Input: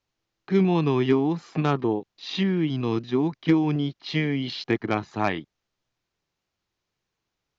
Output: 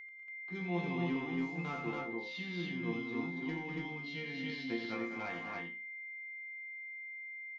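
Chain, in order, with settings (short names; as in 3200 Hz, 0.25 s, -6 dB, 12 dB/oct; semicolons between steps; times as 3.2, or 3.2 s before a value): resonator bank F3 sus4, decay 0.33 s; whine 2100 Hz -47 dBFS; loudspeakers at several distances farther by 30 m -7 dB, 67 m -9 dB, 79 m -10 dB, 97 m -2 dB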